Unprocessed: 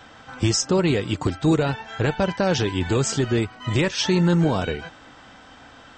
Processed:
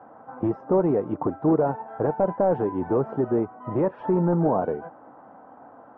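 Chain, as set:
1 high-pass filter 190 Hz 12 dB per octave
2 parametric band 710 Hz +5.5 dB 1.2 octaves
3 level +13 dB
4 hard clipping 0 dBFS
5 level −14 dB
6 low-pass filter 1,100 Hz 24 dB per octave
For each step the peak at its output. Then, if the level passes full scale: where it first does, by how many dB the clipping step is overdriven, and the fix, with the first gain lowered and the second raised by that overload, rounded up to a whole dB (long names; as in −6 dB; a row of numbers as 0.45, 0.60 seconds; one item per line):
−8.0, −5.5, +7.5, 0.0, −14.0, −12.5 dBFS
step 3, 7.5 dB
step 3 +5 dB, step 5 −6 dB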